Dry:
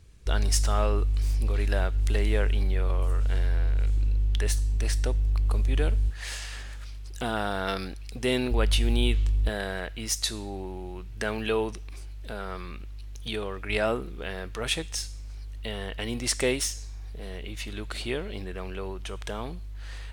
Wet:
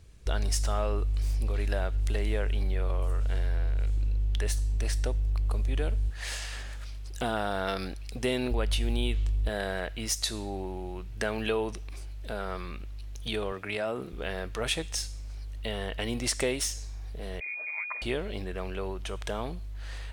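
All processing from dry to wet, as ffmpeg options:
-filter_complex "[0:a]asettb=1/sr,asplit=3[s0][s1][s2];[s0]atrim=end=13.524[s3];[s1]atrim=start=13.52:end=14.13,asetpts=PTS-STARTPTS,afade=t=in:d=0.004:c=qsin,afade=t=out:st=0.606:d=0.004:c=qsin,highpass=f=89:w=0.5412,highpass=f=89:w=1.3066,acompressor=threshold=0.0355:ratio=4:attack=3.2:release=140:knee=1:detection=peak[s4];[s2]atrim=start=14.126[s5];[s3][s4]acrossfade=d=0.004:c1=hsin:c2=qsin[s6];[s6][s5]acrossfade=d=0.004:c1=qsin:c2=hsin,asettb=1/sr,asplit=3[s7][s8][s9];[s7]atrim=end=17.404[s10];[s8]atrim=start=17.4:end=18.02,asetpts=PTS-STARTPTS,afade=t=in:d=0.004:c=qsin,afade=t=out:st=0.616:d=0.004:c=qsin,aecho=1:1:5.4:0.33,atrim=end_sample=27342,lowpass=f=2100:t=q:w=0.5098,lowpass=f=2100:t=q:w=0.6013,lowpass=f=2100:t=q:w=0.9,lowpass=f=2100:t=q:w=2.563,afreqshift=-2500,highpass=840[s11];[s9]atrim=start=18.016[s12];[s10][s11]acrossfade=d=0.004:c1=hsin:c2=qsin[s13];[s13][s12]acrossfade=d=0.004:c1=qsin:c2=hsin,equalizer=f=630:t=o:w=0.62:g=3.5,acompressor=threshold=0.0562:ratio=3"

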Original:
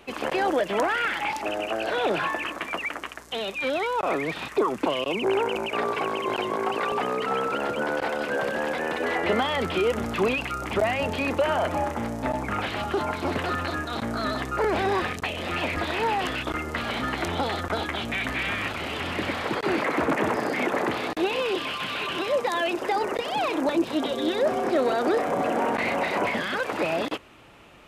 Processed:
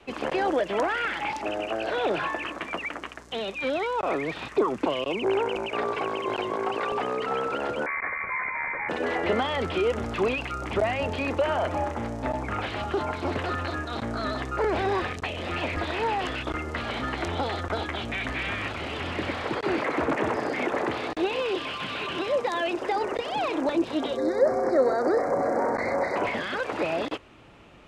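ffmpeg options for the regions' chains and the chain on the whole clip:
-filter_complex "[0:a]asettb=1/sr,asplit=3[s0][s1][s2];[s0]atrim=end=7.864[s3];[s1]atrim=start=7.86:end=8.89,asetpts=PTS-STARTPTS,afade=t=in:d=0.004:c=qsin,afade=t=out:st=1.026:d=0.004:c=qsin,highpass=100,bandreject=f=620:w=7.4,lowpass=f=2200:t=q:w=0.5098,lowpass=f=2200:t=q:w=0.6013,lowpass=f=2200:t=q:w=0.9,lowpass=f=2200:t=q:w=2.563,afreqshift=-2600[s4];[s2]atrim=start=8.886[s5];[s3][s4]acrossfade=d=0.004:c1=hsin:c2=qsin[s6];[s6][s5]acrossfade=d=0.004:c1=qsin:c2=hsin,asettb=1/sr,asplit=3[s7][s8][s9];[s7]atrim=end=24.174[s10];[s8]atrim=start=24.17:end=26.16,asetpts=PTS-STARTPTS,afade=t=in:d=0.004:c=qsin,afade=t=out:st=1.986:d=0.004:c=qsin,asuperstop=centerf=3000:order=8:qfactor=1.5,equalizer=f=530:w=7.8:g=7[s11];[s9]atrim=start=26.156[s12];[s10][s11]acrossfade=d=0.004:c1=hsin:c2=qsin[s13];[s13][s12]acrossfade=d=0.004:c1=qsin:c2=hsin,adynamicequalizer=threshold=0.00708:dfrequency=190:dqfactor=1.3:tfrequency=190:tqfactor=1.3:attack=5:release=100:ratio=0.375:range=3.5:mode=cutabove:tftype=bell,lowpass=7900,lowshelf=f=490:g=5.5,volume=0.708"

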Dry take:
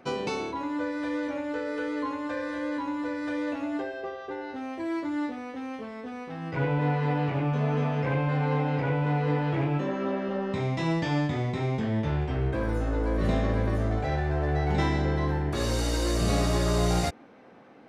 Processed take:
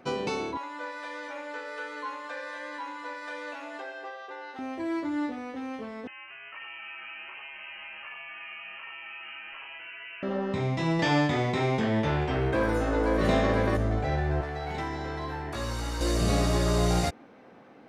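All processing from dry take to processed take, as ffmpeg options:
-filter_complex "[0:a]asettb=1/sr,asplit=3[s0][s1][s2];[s0]atrim=end=0.574[s3];[s1]atrim=start=0.57:end=4.59,asetpts=PTS-STARTPTS,afade=t=in:d=0.004:c=qsin,afade=t=out:st=4.016:d=0.004:c=qsin,highpass=750,aecho=1:1:263:0.299,atrim=end_sample=177282[s4];[s2]atrim=start=4.586[s5];[s3][s4]acrossfade=d=0.004:c1=hsin:c2=qsin[s6];[s6][s5]acrossfade=d=0.004:c1=qsin:c2=hsin,asettb=1/sr,asplit=3[s7][s8][s9];[s7]atrim=end=6.074[s10];[s8]atrim=start=6.07:end=10.23,asetpts=PTS-STARTPTS,afade=t=in:d=0.004:c=qsin,afade=t=out:st=4.156:d=0.004:c=qsin,highpass=850,acompressor=threshold=0.01:ratio=3:attack=3.2:release=140:knee=1:detection=peak,lowpass=f=2800:t=q:w=0.5098,lowpass=f=2800:t=q:w=0.6013,lowpass=f=2800:t=q:w=0.9,lowpass=f=2800:t=q:w=2.563,afreqshift=-3300[s11];[s9]atrim=start=10.226[s12];[s10][s11]acrossfade=d=0.004:c1=hsin:c2=qsin[s13];[s13][s12]acrossfade=d=0.004:c1=qsin:c2=hsin,asettb=1/sr,asplit=3[s14][s15][s16];[s14]atrim=end=10.994[s17];[s15]atrim=start=10.99:end=13.77,asetpts=PTS-STARTPTS,afade=t=in:d=0.004:c=qsin,afade=t=out:st=2.776:d=0.004:c=qsin,acontrast=75,lowshelf=f=220:g=-11[s18];[s16]atrim=start=13.766[s19];[s17][s18]acrossfade=d=0.004:c1=hsin:c2=qsin[s20];[s20][s19]acrossfade=d=0.004:c1=qsin:c2=hsin,asettb=1/sr,asplit=3[s21][s22][s23];[s21]atrim=end=14.414[s24];[s22]atrim=start=14.41:end=16.01,asetpts=PTS-STARTPTS,afade=t=in:d=0.004:c=qsin,afade=t=out:st=1.596:d=0.004:c=qsin,acrossover=split=310|620|1900[s25][s26][s27][s28];[s25]acompressor=threshold=0.0126:ratio=3[s29];[s26]acompressor=threshold=0.00398:ratio=3[s30];[s27]acompressor=threshold=0.0126:ratio=3[s31];[s28]acompressor=threshold=0.00562:ratio=3[s32];[s29][s30][s31][s32]amix=inputs=4:normalize=0,volume=21.1,asoftclip=hard,volume=0.0473,asplit=2[s33][s34];[s34]adelay=18,volume=0.562[s35];[s33][s35]amix=inputs=2:normalize=0,atrim=end_sample=70560[s36];[s23]atrim=start=16.006[s37];[s24][s36]acrossfade=d=0.004:c1=hsin:c2=qsin[s38];[s38][s37]acrossfade=d=0.004:c1=qsin:c2=hsin"

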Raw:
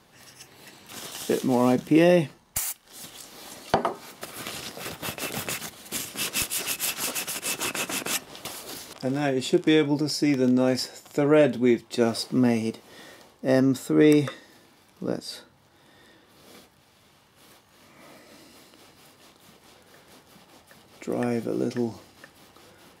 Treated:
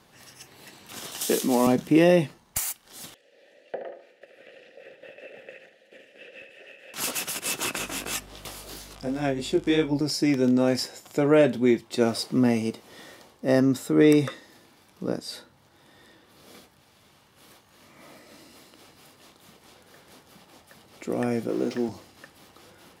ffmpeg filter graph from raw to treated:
-filter_complex "[0:a]asettb=1/sr,asplit=3[s0][s1][s2];[s0]atrim=end=1.214[s3];[s1]atrim=start=1.21:end=1.67,asetpts=PTS-STARTPTS,afade=t=in:d=0.004:c=qsin,afade=t=out:st=0.456:d=0.004:c=qsin,highpass=f=170:w=0.5412,highpass=f=170:w=1.3066,highshelf=f=3900:g=10.5[s4];[s2]atrim=start=1.666[s5];[s3][s4]acrossfade=d=0.004:c1=hsin:c2=qsin[s6];[s6][s5]acrossfade=d=0.004:c1=qsin:c2=hsin,asettb=1/sr,asplit=3[s7][s8][s9];[s7]atrim=end=3.144[s10];[s8]atrim=start=3.14:end=6.94,asetpts=PTS-STARTPTS,afade=t=in:d=0.004:c=qsin,afade=t=out:st=3.796:d=0.004:c=qsin,acrossover=split=2600[s11][s12];[s12]acompressor=threshold=0.00891:ratio=4:attack=1:release=60[s13];[s11][s13]amix=inputs=2:normalize=0,asplit=3[s14][s15][s16];[s14]bandpass=f=530:t=q:w=8,volume=1[s17];[s15]bandpass=f=1840:t=q:w=8,volume=0.501[s18];[s16]bandpass=f=2480:t=q:w=8,volume=0.355[s19];[s17][s18][s19]amix=inputs=3:normalize=0,aecho=1:1:74|148|222|296:0.398|0.147|0.0545|0.0202,atrim=end_sample=167580[s20];[s9]atrim=start=6.936[s21];[s10][s20]acrossfade=d=0.004:c1=hsin:c2=qsin[s22];[s22][s21]acrossfade=d=0.004:c1=qsin:c2=hsin,asettb=1/sr,asplit=3[s23][s24][s25];[s23]atrim=end=7.784[s26];[s24]atrim=start=7.78:end=10.01,asetpts=PTS-STARTPTS,afade=t=in:d=0.004:c=qsin,afade=t=out:st=2.226:d=0.004:c=qsin,flanger=delay=18.5:depth=3.8:speed=2.9,aeval=exprs='val(0)+0.00355*(sin(2*PI*50*n/s)+sin(2*PI*2*50*n/s)/2+sin(2*PI*3*50*n/s)/3+sin(2*PI*4*50*n/s)/4+sin(2*PI*5*50*n/s)/5)':c=same[s27];[s25]atrim=start=10.006[s28];[s26][s27]acrossfade=d=0.004:c1=hsin:c2=qsin[s29];[s29][s28]acrossfade=d=0.004:c1=qsin:c2=hsin,asettb=1/sr,asplit=3[s30][s31][s32];[s30]atrim=end=21.494[s33];[s31]atrim=start=21.49:end=21.89,asetpts=PTS-STARTPTS,afade=t=in:d=0.004:c=qsin,afade=t=out:st=0.396:d=0.004:c=qsin,aeval=exprs='val(0)+0.5*0.0133*sgn(val(0))':c=same,acrossover=split=5600[s34][s35];[s35]acompressor=threshold=0.00251:ratio=4:attack=1:release=60[s36];[s34][s36]amix=inputs=2:normalize=0,highpass=200[s37];[s32]atrim=start=21.886[s38];[s33][s37]acrossfade=d=0.004:c1=hsin:c2=qsin[s39];[s39][s38]acrossfade=d=0.004:c1=qsin:c2=hsin"

